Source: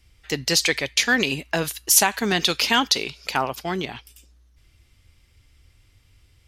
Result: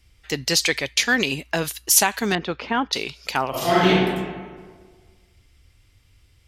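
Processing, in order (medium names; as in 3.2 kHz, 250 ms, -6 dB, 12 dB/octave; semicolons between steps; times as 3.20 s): 2.35–2.93 s: low-pass 1.4 kHz 12 dB/octave; 3.50–3.90 s: reverb throw, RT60 1.6 s, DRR -11.5 dB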